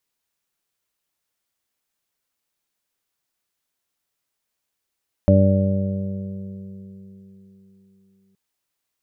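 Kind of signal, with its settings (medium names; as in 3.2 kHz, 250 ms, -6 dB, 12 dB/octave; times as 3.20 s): additive tone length 3.07 s, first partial 96.9 Hz, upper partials -1.5/-8/-18.5/-15/-1.5 dB, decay 3.09 s, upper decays 4.09/1.54/4.70/3.24/2.03 s, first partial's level -13 dB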